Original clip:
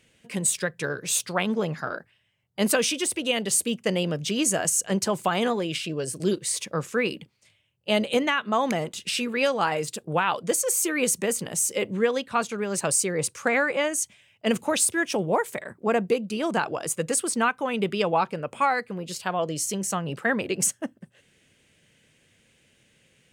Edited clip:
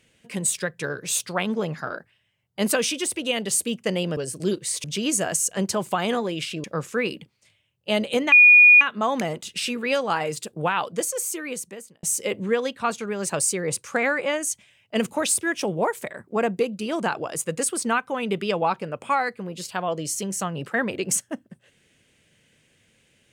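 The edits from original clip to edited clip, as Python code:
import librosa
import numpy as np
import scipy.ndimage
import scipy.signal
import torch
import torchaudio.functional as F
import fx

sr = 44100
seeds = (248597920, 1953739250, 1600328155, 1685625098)

y = fx.edit(x, sr, fx.move(start_s=5.97, length_s=0.67, to_s=4.17),
    fx.insert_tone(at_s=8.32, length_s=0.49, hz=2450.0, db=-8.0),
    fx.fade_out_span(start_s=10.3, length_s=1.24), tone=tone)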